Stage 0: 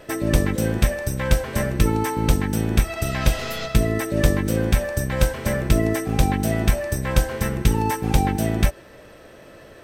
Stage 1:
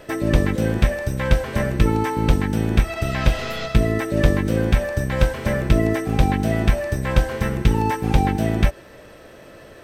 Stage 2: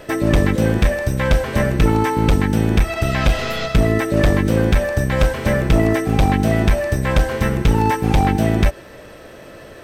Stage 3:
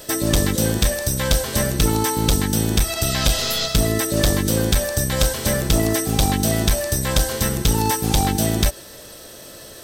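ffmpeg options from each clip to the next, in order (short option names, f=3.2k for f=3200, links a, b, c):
-filter_complex "[0:a]acrossover=split=4300[a][b];[b]acompressor=threshold=-43dB:ratio=4:attack=1:release=60[c];[a][c]amix=inputs=2:normalize=0,volume=1.5dB"
-af "asoftclip=type=hard:threshold=-12.5dB,volume=4.5dB"
-af "aexciter=amount=6.7:drive=3.5:freq=3.4k,volume=-4dB"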